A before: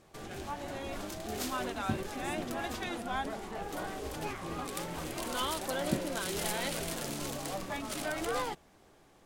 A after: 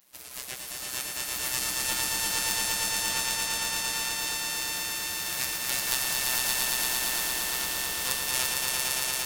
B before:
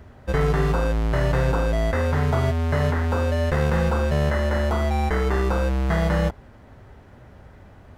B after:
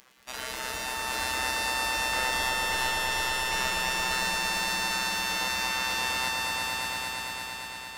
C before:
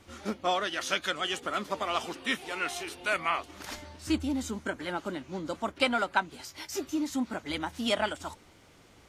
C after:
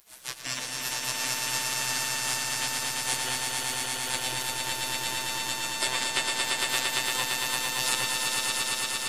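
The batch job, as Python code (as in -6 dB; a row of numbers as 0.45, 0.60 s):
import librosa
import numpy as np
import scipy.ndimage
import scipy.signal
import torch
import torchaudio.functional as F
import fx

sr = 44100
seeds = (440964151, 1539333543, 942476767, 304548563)

y = fx.robotise(x, sr, hz=128.0)
y = fx.high_shelf(y, sr, hz=3100.0, db=11.0)
y = fx.spec_gate(y, sr, threshold_db=-20, keep='weak')
y = fx.echo_swell(y, sr, ms=114, loudest=5, wet_db=-3.5)
y = y * 10.0 ** (-30 / 20.0) / np.sqrt(np.mean(np.square(y)))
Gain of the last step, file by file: +11.5, 0.0, +9.5 dB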